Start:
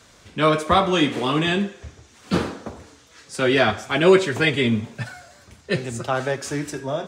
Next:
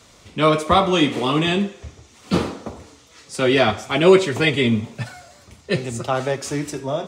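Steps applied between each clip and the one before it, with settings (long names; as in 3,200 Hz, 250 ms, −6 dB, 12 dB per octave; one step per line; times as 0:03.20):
parametric band 1,600 Hz −9.5 dB 0.21 octaves
level +2 dB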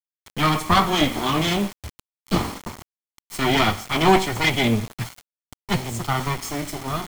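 lower of the sound and its delayed copy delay 0.92 ms
bit reduction 6 bits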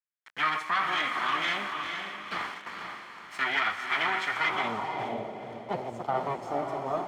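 brickwall limiter −13.5 dBFS, peak gain reduction 10 dB
feedback delay with all-pass diffusion 475 ms, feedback 41%, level −5 dB
band-pass filter sweep 1,700 Hz → 630 Hz, 0:04.29–0:05.22
level +3.5 dB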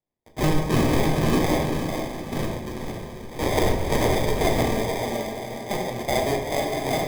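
sample-rate reduction 1,400 Hz, jitter 0%
on a send at −2 dB: convolution reverb RT60 0.70 s, pre-delay 8 ms
on the sum: level +4 dB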